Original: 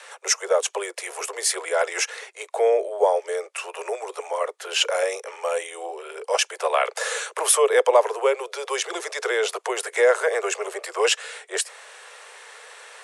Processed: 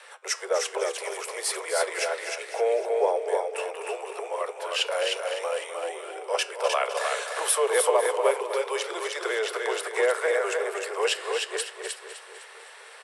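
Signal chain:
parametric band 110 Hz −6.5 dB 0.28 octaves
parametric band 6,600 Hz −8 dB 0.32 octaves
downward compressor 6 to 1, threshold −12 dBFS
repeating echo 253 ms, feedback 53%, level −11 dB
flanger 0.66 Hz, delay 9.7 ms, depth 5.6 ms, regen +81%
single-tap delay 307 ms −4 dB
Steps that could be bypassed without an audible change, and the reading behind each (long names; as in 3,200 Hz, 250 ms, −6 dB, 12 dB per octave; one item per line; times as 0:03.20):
parametric band 110 Hz: nothing at its input below 320 Hz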